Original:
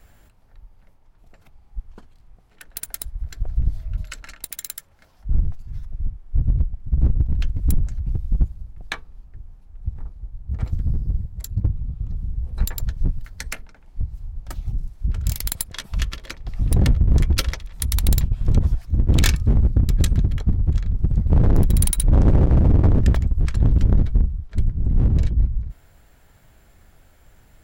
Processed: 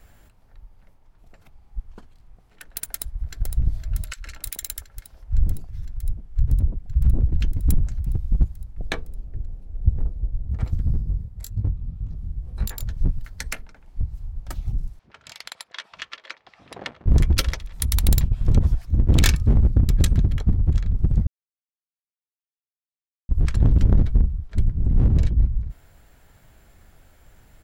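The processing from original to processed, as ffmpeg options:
-filter_complex "[0:a]asplit=2[a][b];[b]afade=t=in:st=2.89:d=0.01,afade=t=out:st=3.44:d=0.01,aecho=0:1:510|1020|1530|2040|2550|3060|3570|4080|4590|5100|5610|6120:0.354813|0.283851|0.227081|0.181664|0.145332|0.116265|0.0930122|0.0744098|0.0595278|0.0476222|0.0380978|0.0304782[c];[a][c]amix=inputs=2:normalize=0,asettb=1/sr,asplit=3[d][e][f];[d]atrim=end=4.134[g];[e]atrim=start=4.13:end=7.53,asetpts=PTS-STARTPTS,afade=t=in:d=0.004:c=qsin,afade=t=out:st=3.396:d=0.004:c=qsin,acrossover=split=170|1100[h][i][j];[h]adelay=30[k];[i]adelay=120[l];[k][l][j]amix=inputs=3:normalize=0,atrim=end_sample=149940[m];[f]atrim=start=7.526[n];[g][m]acrossfade=d=0.004:c1=hsin:c2=qsin[o];[o][n]acrossfade=d=0.004:c1=qsin:c2=hsin,asettb=1/sr,asplit=3[p][q][r];[p]atrim=end=8.784[s];[q]atrim=start=8.78:end=10.48,asetpts=PTS-STARTPTS,afade=t=in:d=0.004:c=qsin,afade=t=out:st=1.696:d=0.004:c=qsin,lowshelf=f=730:t=q:w=1.5:g=8.5[t];[r]atrim=start=10.476[u];[s][t]acrossfade=d=0.004:c1=hsin:c2=qsin[v];[v][u]acrossfade=d=0.004:c1=qsin:c2=hsin,asplit=3[w][x][y];[w]afade=t=out:st=11.01:d=0.02[z];[x]flanger=delay=19:depth=7.5:speed=1.9,afade=t=in:st=11.01:d=0.02,afade=t=out:st=12.89:d=0.02[aa];[y]afade=t=in:st=12.89:d=0.02[ab];[z][aa][ab]amix=inputs=3:normalize=0,asettb=1/sr,asplit=3[ac][ad][ae];[ac]atrim=end=14.994[af];[ad]atrim=start=14.99:end=17.06,asetpts=PTS-STARTPTS,afade=t=in:d=0.004:c=qsin,afade=t=out:st=2.066:d=0.004:c=qsin,highpass=730,lowpass=3.8k[ag];[ae]atrim=start=17.056[ah];[af][ag]acrossfade=d=0.004:c1=hsin:c2=qsin[ai];[ai][ah]acrossfade=d=0.004:c1=qsin:c2=hsin,asplit=3[aj][ak][al];[aj]atrim=end=21.27,asetpts=PTS-STARTPTS,afade=t=out:st=21.266:d=0.004:c=hsin[am];[ak]atrim=start=21.27:end=23.29,asetpts=PTS-STARTPTS,volume=0[an];[al]atrim=start=23.29,asetpts=PTS-STARTPTS,afade=t=in:d=0.004:c=hsin[ao];[am][an][ao]concat=n=3:v=0:a=1"

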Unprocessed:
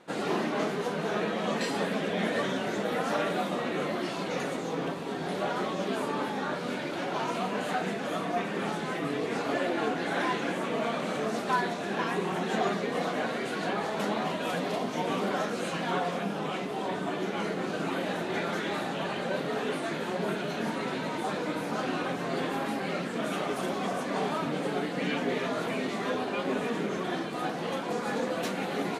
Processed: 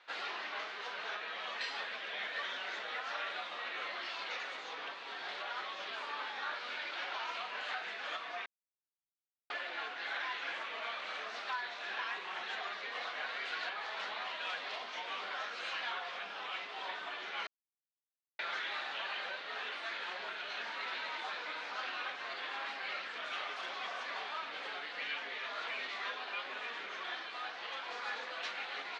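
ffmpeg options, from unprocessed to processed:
-filter_complex "[0:a]asplit=5[a][b][c][d][e];[a]atrim=end=8.46,asetpts=PTS-STARTPTS,afade=t=out:st=8.456:d=0.004:c=hsin[f];[b]atrim=start=8.46:end=9.5,asetpts=PTS-STARTPTS,volume=0[g];[c]atrim=start=9.5:end=17.47,asetpts=PTS-STARTPTS,afade=t=in:d=0.004:c=hsin,afade=t=out:st=7.966:d=0.004:c=hsin[h];[d]atrim=start=17.47:end=18.39,asetpts=PTS-STARTPTS,volume=0[i];[e]atrim=start=18.39,asetpts=PTS-STARTPTS,afade=t=in:d=0.004:c=hsin[j];[f][g][h][i][j]concat=n=5:v=0:a=1,lowpass=f=4.7k:w=0.5412,lowpass=f=4.7k:w=1.3066,alimiter=limit=-23dB:level=0:latency=1:release=392,highpass=1.4k,volume=1dB"

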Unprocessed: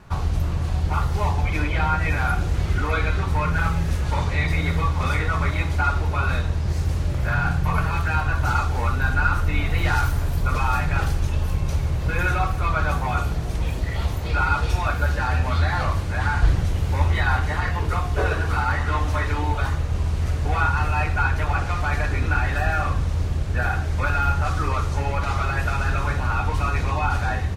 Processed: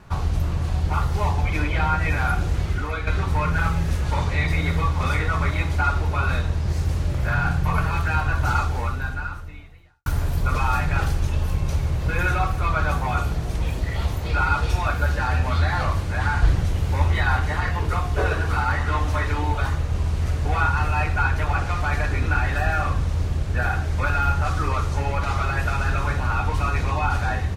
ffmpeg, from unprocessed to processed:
-filter_complex "[0:a]asplit=3[a][b][c];[a]atrim=end=3.07,asetpts=PTS-STARTPTS,afade=t=out:st=2.51:d=0.56:silence=0.421697[d];[b]atrim=start=3.07:end=10.06,asetpts=PTS-STARTPTS,afade=t=in:d=0.004:c=hsin:silence=0.421697,afade=t=out:st=5.56:d=1.43:c=qua[e];[c]atrim=start=10.06,asetpts=PTS-STARTPTS,afade=t=in:d=0.004:c=hsin[f];[d][e][f]concat=n=3:v=0:a=1"

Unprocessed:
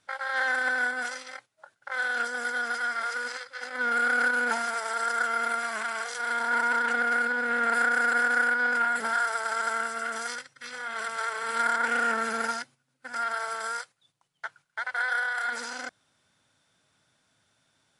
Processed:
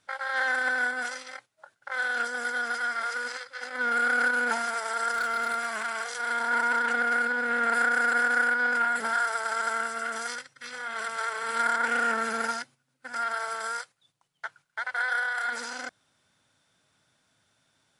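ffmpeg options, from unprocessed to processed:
-filter_complex "[0:a]asettb=1/sr,asplit=3[a][b][c];[a]atrim=end=5.114[d];[b]atrim=start=5.11:end=6.07,asetpts=PTS-STARTPTS,afade=t=in:d=0.004:c=qsin,afade=t=out:st=0.956:d=0.004:c=qsin,volume=24dB,asoftclip=hard,volume=-24dB[e];[c]atrim=start=6.066[f];[d][e]acrossfade=d=0.004:c1=hsin:c2=qsin[g];[g][f]acrossfade=d=0.004:c1=qsin:c2=hsin"

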